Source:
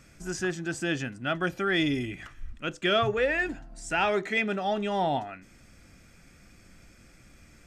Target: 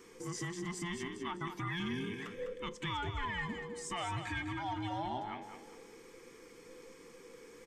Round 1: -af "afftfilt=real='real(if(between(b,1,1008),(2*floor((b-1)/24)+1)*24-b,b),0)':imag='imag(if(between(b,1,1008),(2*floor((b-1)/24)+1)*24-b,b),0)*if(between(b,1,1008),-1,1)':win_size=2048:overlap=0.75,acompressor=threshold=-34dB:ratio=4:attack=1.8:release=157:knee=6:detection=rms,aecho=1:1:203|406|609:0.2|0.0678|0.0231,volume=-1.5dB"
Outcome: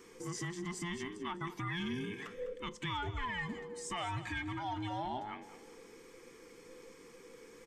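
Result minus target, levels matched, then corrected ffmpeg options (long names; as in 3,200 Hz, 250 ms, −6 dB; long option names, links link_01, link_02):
echo-to-direct −6 dB
-af "afftfilt=real='real(if(between(b,1,1008),(2*floor((b-1)/24)+1)*24-b,b),0)':imag='imag(if(between(b,1,1008),(2*floor((b-1)/24)+1)*24-b,b),0)*if(between(b,1,1008),-1,1)':win_size=2048:overlap=0.75,acompressor=threshold=-34dB:ratio=4:attack=1.8:release=157:knee=6:detection=rms,aecho=1:1:203|406|609|812:0.398|0.135|0.046|0.0156,volume=-1.5dB"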